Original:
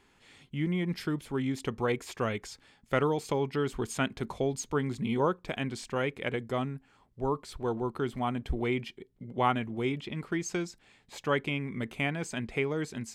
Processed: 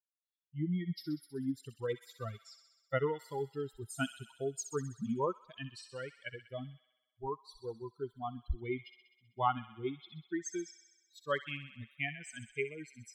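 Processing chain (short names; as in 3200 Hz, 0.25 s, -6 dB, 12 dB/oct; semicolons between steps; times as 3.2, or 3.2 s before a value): per-bin expansion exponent 3; thin delay 64 ms, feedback 69%, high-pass 2200 Hz, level -9 dB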